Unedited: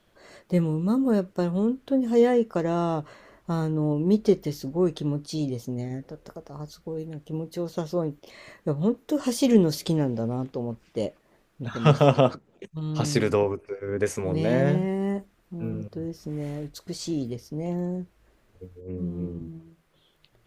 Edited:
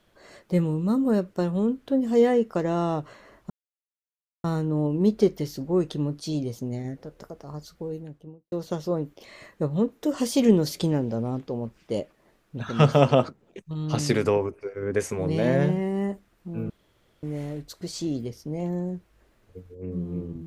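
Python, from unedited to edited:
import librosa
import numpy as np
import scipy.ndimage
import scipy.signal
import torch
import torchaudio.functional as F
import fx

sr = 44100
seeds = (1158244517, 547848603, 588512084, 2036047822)

y = fx.studio_fade_out(x, sr, start_s=6.89, length_s=0.69)
y = fx.edit(y, sr, fx.insert_silence(at_s=3.5, length_s=0.94),
    fx.room_tone_fill(start_s=15.76, length_s=0.53), tone=tone)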